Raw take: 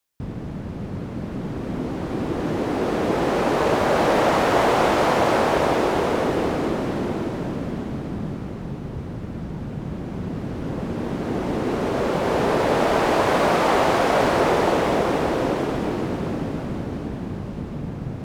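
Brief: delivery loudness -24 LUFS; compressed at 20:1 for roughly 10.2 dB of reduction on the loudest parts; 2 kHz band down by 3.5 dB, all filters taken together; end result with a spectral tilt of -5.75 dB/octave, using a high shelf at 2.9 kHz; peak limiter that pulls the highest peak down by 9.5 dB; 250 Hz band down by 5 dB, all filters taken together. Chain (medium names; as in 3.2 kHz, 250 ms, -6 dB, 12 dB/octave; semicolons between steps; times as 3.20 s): peaking EQ 250 Hz -7 dB; peaking EQ 2 kHz -7 dB; treble shelf 2.9 kHz +6.5 dB; compression 20:1, threshold -26 dBFS; trim +11.5 dB; peak limiter -15 dBFS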